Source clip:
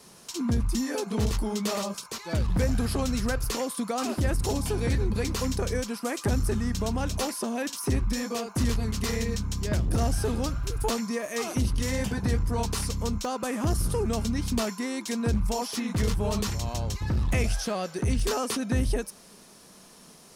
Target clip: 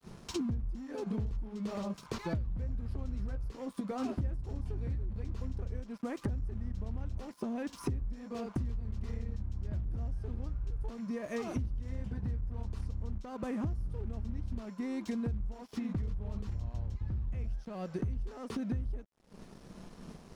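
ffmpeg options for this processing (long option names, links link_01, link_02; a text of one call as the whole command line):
ffmpeg -i in.wav -filter_complex "[0:a]agate=range=-33dB:threshold=-47dB:ratio=3:detection=peak,aemphasis=mode=reproduction:type=riaa,acompressor=threshold=-36dB:ratio=20,aeval=exprs='sgn(val(0))*max(abs(val(0))-0.001,0)':channel_layout=same,asettb=1/sr,asplit=3[link_01][link_02][link_03];[link_01]atrim=end=3.164[link_04];[link_02]atrim=start=3.16:end=4.43,asetpts=PTS-STARTPTS,afade=type=in:duration=0.004:curve=qsin,afade=type=out:start_time=1.266:duration=0.004:curve=qsin,asplit=2[link_05][link_06];[link_06]adelay=15,volume=-8dB[link_07];[link_05][link_07]amix=inputs=2:normalize=0,atrim=end_sample=56007[link_08];[link_03]atrim=start=4.426[link_09];[link_04][link_08]acrossfade=duration=0.004:curve1=hsin:curve2=qsin[link_10];[link_10][link_09]acrossfade=duration=0.004:curve1=qsin:curve2=hsin,volume=4dB" out.wav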